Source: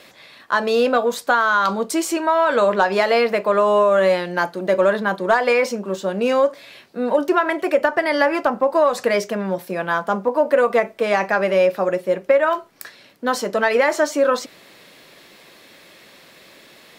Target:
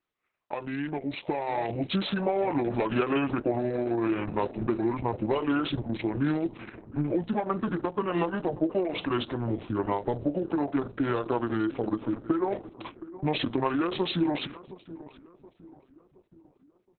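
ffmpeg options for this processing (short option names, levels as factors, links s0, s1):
-filter_complex "[0:a]agate=range=0.02:threshold=0.01:ratio=16:detection=peak,equalizer=f=830:w=2.8:g=3.5,acrossover=split=130|3000[s0][s1][s2];[s1]acompressor=threshold=0.0891:ratio=10[s3];[s0][s3][s2]amix=inputs=3:normalize=0,asetrate=26222,aresample=44100,atempo=1.68179,dynaudnorm=f=290:g=9:m=2.66,asplit=2[s4][s5];[s5]adelay=721,lowpass=f=1100:p=1,volume=0.168,asplit=2[s6][s7];[s7]adelay=721,lowpass=f=1100:p=1,volume=0.49,asplit=2[s8][s9];[s9]adelay=721,lowpass=f=1100:p=1,volume=0.49,asplit=2[s10][s11];[s11]adelay=721,lowpass=f=1100:p=1,volume=0.49[s12];[s4][s6][s8][s10][s12]amix=inputs=5:normalize=0,volume=0.376" -ar 48000 -c:a libopus -b:a 6k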